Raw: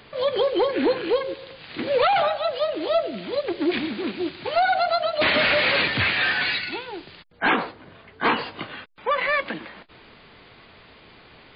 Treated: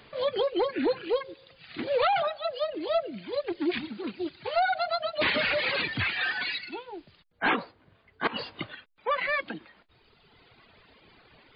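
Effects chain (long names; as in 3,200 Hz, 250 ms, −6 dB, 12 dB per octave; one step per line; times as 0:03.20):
reverb reduction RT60 1.8 s
0:08.27–0:08.75: compressor whose output falls as the input rises −31 dBFS, ratio −1
level −4.5 dB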